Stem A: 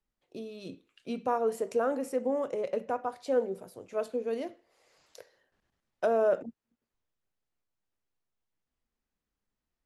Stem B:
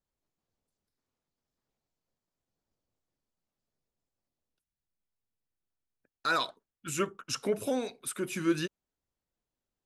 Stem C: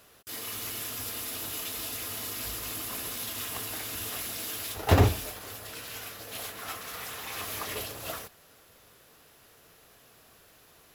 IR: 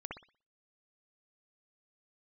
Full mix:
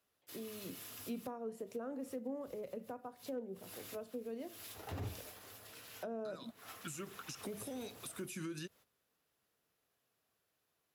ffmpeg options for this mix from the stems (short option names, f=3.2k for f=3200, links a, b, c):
-filter_complex "[0:a]volume=-4dB,asplit=2[a][b];[1:a]highshelf=f=4.4k:g=8.5,dynaudnorm=f=390:g=9:m=11.5dB,alimiter=limit=-17dB:level=0:latency=1:release=196,volume=-9.5dB[c];[2:a]volume=-13dB[d];[b]apad=whole_len=482758[e];[d][e]sidechaincompress=threshold=-42dB:ratio=8:attack=11:release=292[f];[c][f]amix=inputs=2:normalize=0,agate=range=-12dB:threshold=-58dB:ratio=16:detection=peak,alimiter=level_in=6.5dB:limit=-24dB:level=0:latency=1:release=104,volume=-6.5dB,volume=0dB[g];[a][g]amix=inputs=2:normalize=0,highpass=80,acrossover=split=260[h][i];[i]acompressor=threshold=-45dB:ratio=6[j];[h][j]amix=inputs=2:normalize=0,asoftclip=type=hard:threshold=-33.5dB"